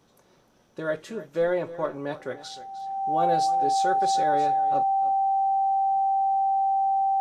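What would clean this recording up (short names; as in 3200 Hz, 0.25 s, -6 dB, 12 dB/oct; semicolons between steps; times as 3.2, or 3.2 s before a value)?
notch 780 Hz, Q 30; inverse comb 0.304 s -16 dB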